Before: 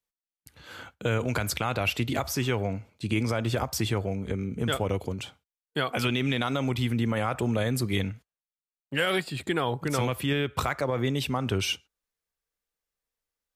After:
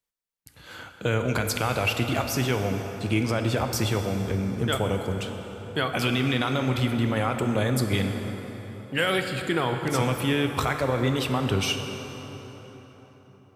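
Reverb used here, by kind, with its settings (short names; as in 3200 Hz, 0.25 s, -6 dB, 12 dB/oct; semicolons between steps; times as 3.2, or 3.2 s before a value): plate-style reverb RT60 4.5 s, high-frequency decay 0.6×, DRR 5 dB; gain +1.5 dB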